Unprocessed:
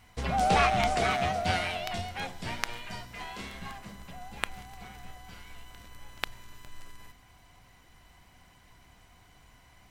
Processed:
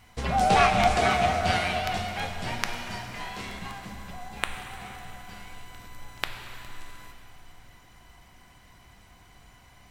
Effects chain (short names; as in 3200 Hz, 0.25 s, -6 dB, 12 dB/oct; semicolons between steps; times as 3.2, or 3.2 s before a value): plate-style reverb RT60 3.7 s, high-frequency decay 0.75×, pre-delay 0 ms, DRR 4.5 dB; gain +2.5 dB